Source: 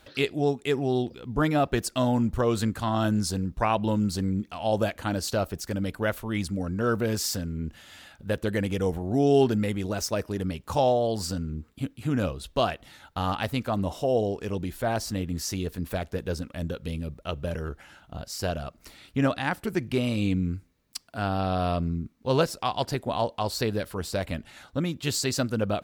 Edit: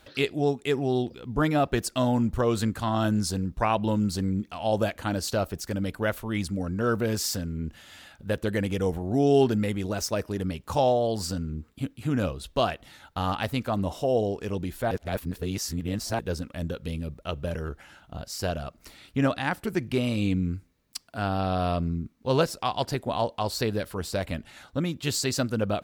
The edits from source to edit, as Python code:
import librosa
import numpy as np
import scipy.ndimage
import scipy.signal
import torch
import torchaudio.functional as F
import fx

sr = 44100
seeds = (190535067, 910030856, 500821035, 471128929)

y = fx.edit(x, sr, fx.reverse_span(start_s=14.91, length_s=1.28), tone=tone)